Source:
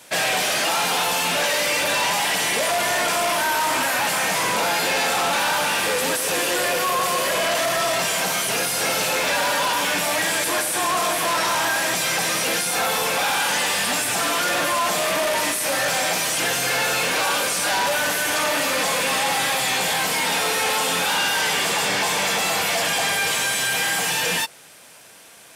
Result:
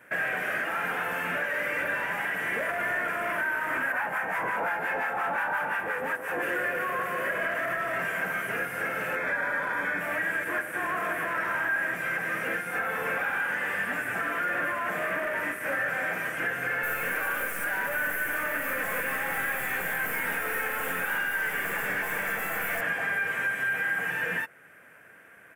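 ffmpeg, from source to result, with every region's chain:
-filter_complex "[0:a]asettb=1/sr,asplit=3[a][b][c];[a]atrim=end=3.924[d];[b]atrim=start=3.92:end=6.43,asetpts=PTS-STARTPTS,afade=t=in:d=0.004:c=qsin,afade=t=out:st=2.506:d=0.004:c=qsin,equalizer=f=860:w=1.8:g=11,acrossover=split=890[e][f];[e]aeval=exprs='val(0)*(1-0.7/2+0.7/2*cos(2*PI*5.7*n/s))':c=same[g];[f]aeval=exprs='val(0)*(1-0.7/2-0.7/2*cos(2*PI*5.7*n/s))':c=same[h];[g][h]amix=inputs=2:normalize=0[i];[c]atrim=start=6.426[j];[d][i]acrossfade=d=0.004:c1=hsin:c2=qsin[k];[k][j]acrossfade=d=0.004:c1=qsin:c2=hsin,asettb=1/sr,asplit=3[l][m][n];[l]atrim=end=9.164[o];[m]atrim=start=9.16:end=10.01,asetpts=PTS-STARTPTS,afade=t=in:d=0.004:c=qsin,afade=t=out:st=0.846:d=0.004:c=qsin,asuperstop=centerf=2800:order=4:qfactor=6.2,highshelf=f=12k:g=-10.5[p];[n]atrim=start=10.006[q];[o][p]acrossfade=d=0.004:c1=hsin:c2=qsin[r];[r][q]acrossfade=d=0.004:c1=qsin:c2=hsin,asettb=1/sr,asplit=3[s][t][u];[s]atrim=end=16.834[v];[t]atrim=start=16.83:end=22.81,asetpts=PTS-STARTPTS,afade=t=in:d=0.004:c=qsin,afade=t=out:st=5.976:d=0.004:c=qsin,aemphasis=mode=production:type=50fm,aeval=exprs='clip(val(0),-1,0.119)':c=same[w];[u]atrim=start=22.806[x];[v][w]acrossfade=d=0.004:c1=hsin:c2=qsin[y];[y][x]acrossfade=d=0.004:c1=qsin:c2=hsin,firequalizer=gain_entry='entry(500,0);entry(890,-6);entry(1600,9);entry(4000,-27);entry(14000,-8)':delay=0.05:min_phase=1,alimiter=limit=-15.5dB:level=0:latency=1:release=369,volume=-5dB"

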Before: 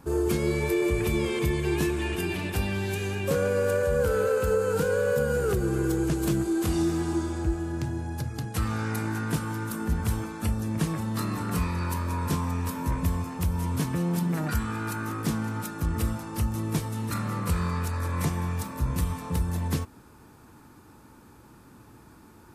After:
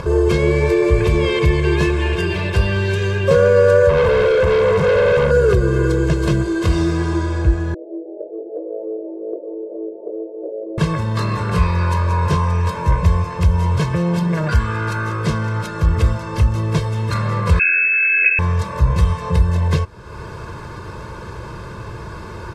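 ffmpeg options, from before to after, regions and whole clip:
-filter_complex "[0:a]asettb=1/sr,asplit=3[a][b][c];[a]atrim=end=3.894[d];[b]atrim=start=3.89:end=5.31,asetpts=PTS-STARTPTS,afade=t=in:d=0.004:c=qsin,afade=t=out:st=1.416:d=0.004:c=qsin,equalizer=f=210:w=0.44:g=11,bandreject=f=60:t=h:w=6,bandreject=f=120:t=h:w=6,bandreject=f=180:t=h:w=6,bandreject=f=240:t=h:w=6,bandreject=f=300:t=h:w=6,bandreject=f=360:t=h:w=6,bandreject=f=420:t=h:w=6,bandreject=f=480:t=h:w=6,bandreject=f=540:t=h:w=6,volume=25.5dB,asoftclip=hard,volume=-25.5dB[e];[c]atrim=start=5.306[f];[d][e]acrossfade=d=0.004:c1=hsin:c2=qsin[g];[g][f]acrossfade=d=0.004:c1=qsin:c2=hsin,asettb=1/sr,asplit=3[h][i][j];[h]atrim=end=7.744[k];[i]atrim=start=7.74:end=10.78,asetpts=PTS-STARTPTS,afade=t=in:d=0.004:c=qsin,afade=t=out:st=3.036:d=0.004:c=qsin,flanger=delay=16:depth=3.3:speed=1.1,asuperpass=centerf=450:order=12:qfactor=1.2[l];[j]atrim=start=10.776[m];[k][l]acrossfade=d=0.004:c1=hsin:c2=qsin[n];[n][m]acrossfade=d=0.004:c1=qsin:c2=hsin,asettb=1/sr,asplit=3[o][p][q];[o]atrim=end=17.594[r];[p]atrim=start=17.59:end=18.39,asetpts=PTS-STARTPTS,afade=t=in:d=0.004:c=qsin,afade=t=out:st=0.796:d=0.004:c=qsin,asuperstop=centerf=1700:order=12:qfactor=1.9,lowpass=f=2.3k:t=q:w=0.5098,lowpass=f=2.3k:t=q:w=0.6013,lowpass=f=2.3k:t=q:w=0.9,lowpass=f=2.3k:t=q:w=2.563,afreqshift=-2700[s];[q]atrim=start=18.386[t];[r][s]acrossfade=d=0.004:c1=hsin:c2=qsin[u];[u][t]acrossfade=d=0.004:c1=qsin:c2=hsin,acompressor=mode=upward:threshold=-29dB:ratio=2.5,lowpass=4.6k,aecho=1:1:1.9:0.9,volume=8.5dB"

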